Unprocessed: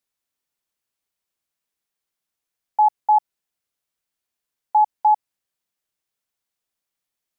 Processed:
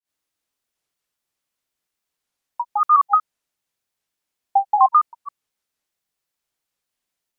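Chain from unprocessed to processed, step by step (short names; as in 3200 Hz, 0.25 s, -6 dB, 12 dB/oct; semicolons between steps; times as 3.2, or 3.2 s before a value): grains 0.236 s, grains 12/s, spray 0.211 s, pitch spread up and down by 7 st; gain +6 dB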